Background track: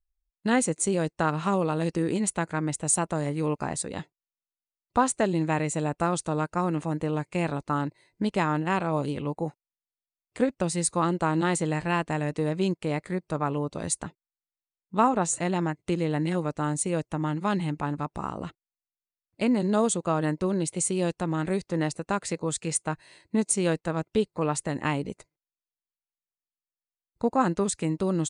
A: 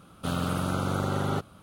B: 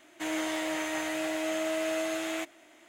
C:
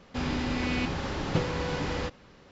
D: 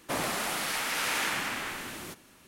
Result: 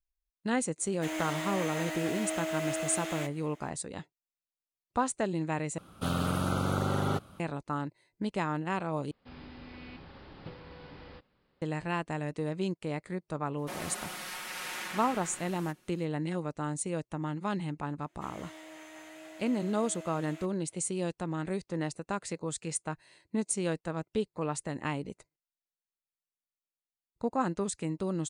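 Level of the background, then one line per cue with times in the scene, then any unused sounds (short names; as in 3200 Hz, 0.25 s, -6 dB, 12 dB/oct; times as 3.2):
background track -6.5 dB
0.82 add B -3.5 dB + block floating point 5-bit
5.78 replace with A -1.5 dB
9.11 replace with C -18 dB + downsampling 11025 Hz
13.58 add D -10.5 dB + comb 5.5 ms, depth 69%
18.01 add B -16.5 dB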